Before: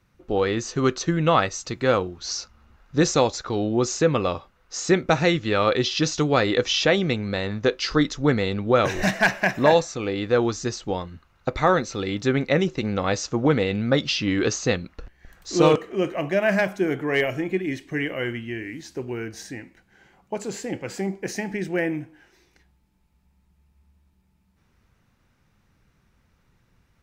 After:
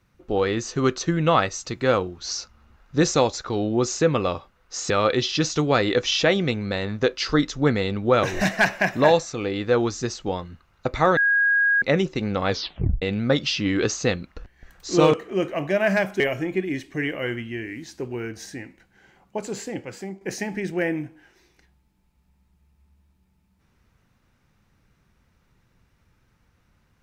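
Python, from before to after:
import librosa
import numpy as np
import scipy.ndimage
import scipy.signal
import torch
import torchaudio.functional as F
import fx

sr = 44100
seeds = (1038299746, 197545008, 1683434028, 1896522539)

y = fx.edit(x, sr, fx.cut(start_s=4.9, length_s=0.62),
    fx.bleep(start_s=11.79, length_s=0.65, hz=1640.0, db=-16.0),
    fx.tape_stop(start_s=13.11, length_s=0.53),
    fx.cut(start_s=16.82, length_s=0.35),
    fx.fade_out_to(start_s=20.56, length_s=0.62, floor_db=-10.5), tone=tone)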